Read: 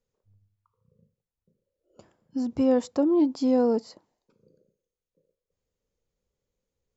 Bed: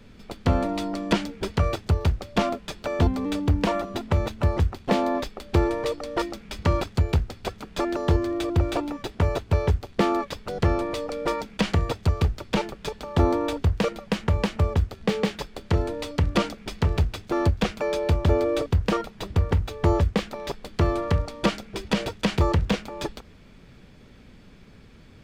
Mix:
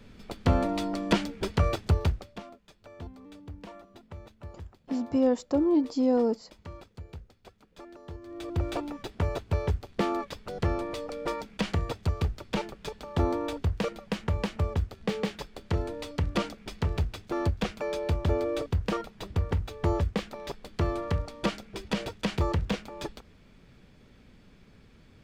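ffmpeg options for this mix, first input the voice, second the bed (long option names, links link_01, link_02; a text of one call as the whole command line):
ffmpeg -i stem1.wav -i stem2.wav -filter_complex "[0:a]adelay=2550,volume=-2dB[link_01];[1:a]volume=13.5dB,afade=type=out:start_time=1.98:duration=0.42:silence=0.105925,afade=type=in:start_time=8.22:duration=0.45:silence=0.16788[link_02];[link_01][link_02]amix=inputs=2:normalize=0" out.wav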